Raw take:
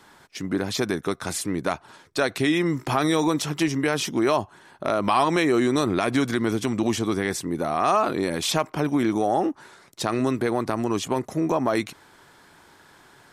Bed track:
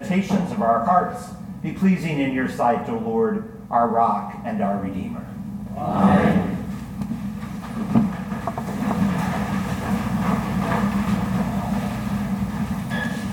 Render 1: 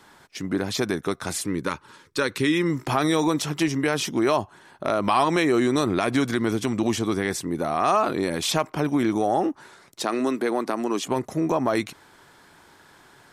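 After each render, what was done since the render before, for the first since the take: 1.48–2.70 s: Butterworth band-stop 700 Hz, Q 2.5; 10.01–11.08 s: high-pass 210 Hz 24 dB/octave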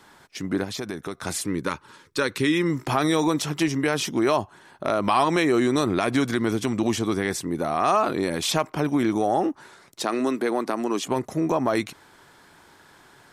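0.64–1.23 s: compression 2:1, threshold -32 dBFS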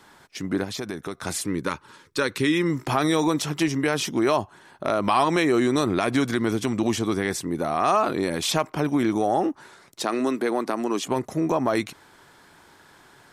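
no audible change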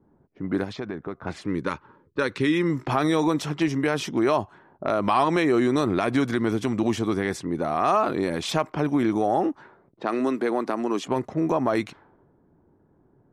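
level-controlled noise filter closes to 310 Hz, open at -21.5 dBFS; treble shelf 3.9 kHz -9 dB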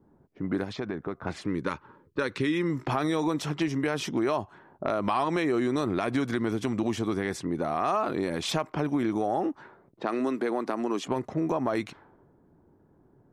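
compression 2:1, threshold -27 dBFS, peak gain reduction 6.5 dB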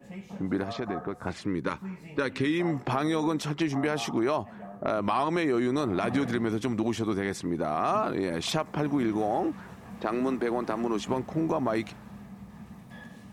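add bed track -21 dB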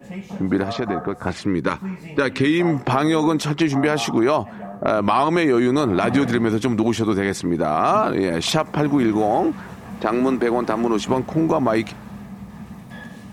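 trim +9 dB

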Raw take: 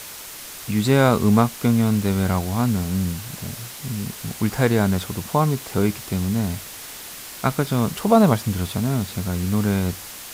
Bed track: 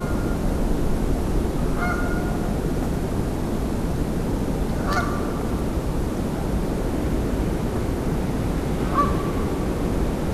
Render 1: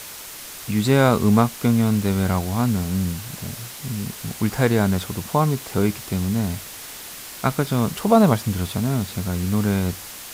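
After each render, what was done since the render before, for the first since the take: no audible change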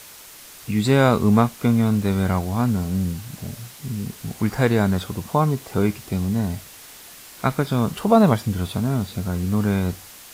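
noise print and reduce 6 dB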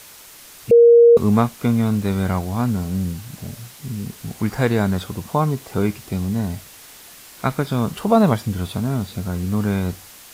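0.71–1.17 s: bleep 470 Hz -6 dBFS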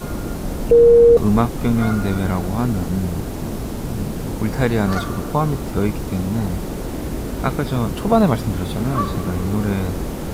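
add bed track -2.5 dB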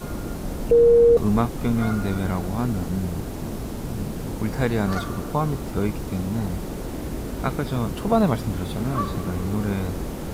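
trim -4.5 dB

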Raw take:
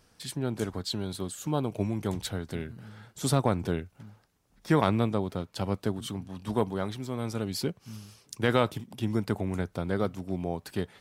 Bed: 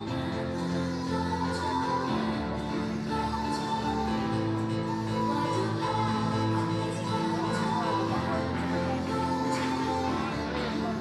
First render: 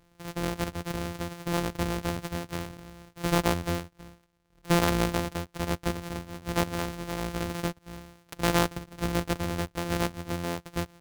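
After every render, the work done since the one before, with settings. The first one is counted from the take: sorted samples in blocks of 256 samples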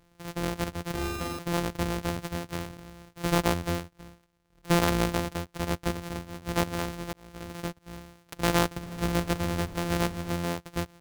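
0.91–1.39 s: flutter echo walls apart 7.4 m, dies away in 1.4 s; 7.13–7.94 s: fade in; 8.83–10.53 s: jump at every zero crossing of -35.5 dBFS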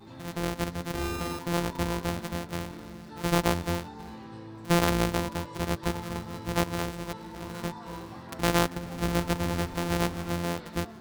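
add bed -14.5 dB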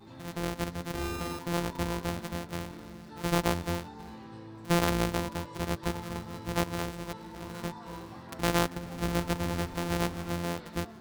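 trim -2.5 dB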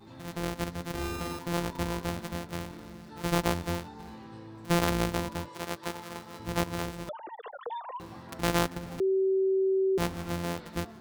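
5.49–6.40 s: high-pass 420 Hz 6 dB/octave; 7.09–8.00 s: formants replaced by sine waves; 9.00–9.98 s: bleep 383 Hz -22.5 dBFS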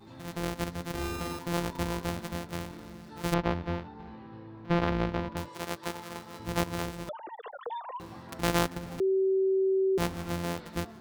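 3.34–5.37 s: distance through air 280 m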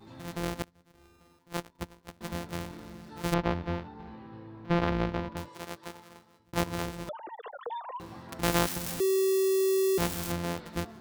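0.62–2.21 s: gate -29 dBFS, range -26 dB; 5.03–6.53 s: fade out; 8.43–10.32 s: zero-crossing glitches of -20.5 dBFS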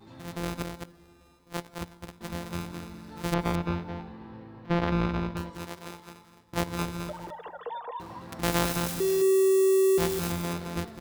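delay 214 ms -5.5 dB; plate-style reverb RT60 2.6 s, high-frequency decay 0.6×, DRR 19.5 dB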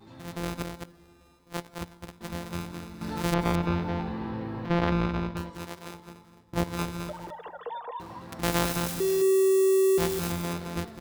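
3.01–4.93 s: level flattener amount 50%; 5.94–6.64 s: tilt shelf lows +3.5 dB, about 670 Hz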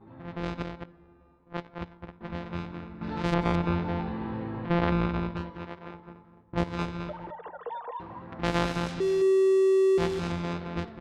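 low-pass 3.9 kHz 12 dB/octave; level-controlled noise filter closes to 1.3 kHz, open at -24 dBFS

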